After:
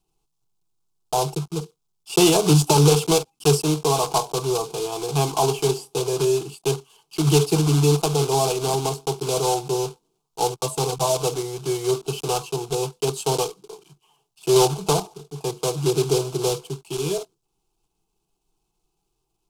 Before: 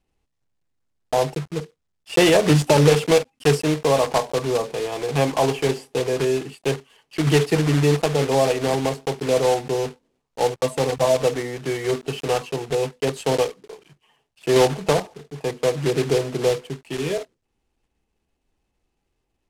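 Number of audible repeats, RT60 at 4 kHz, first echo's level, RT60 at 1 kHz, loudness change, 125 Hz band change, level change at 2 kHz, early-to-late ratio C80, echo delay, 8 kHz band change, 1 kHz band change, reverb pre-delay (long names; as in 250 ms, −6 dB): no echo audible, no reverb audible, no echo audible, no reverb audible, −0.5 dB, +1.5 dB, −7.5 dB, no reverb audible, no echo audible, +6.0 dB, +1.0 dB, no reverb audible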